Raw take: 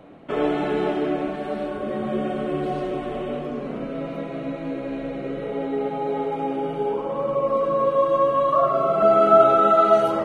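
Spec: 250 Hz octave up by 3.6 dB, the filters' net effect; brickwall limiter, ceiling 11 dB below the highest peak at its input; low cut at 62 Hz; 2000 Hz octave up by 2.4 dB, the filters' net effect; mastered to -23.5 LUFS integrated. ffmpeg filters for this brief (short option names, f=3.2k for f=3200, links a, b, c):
-af "highpass=62,equalizer=f=250:t=o:g=4.5,equalizer=f=2k:t=o:g=3,alimiter=limit=-13.5dB:level=0:latency=1"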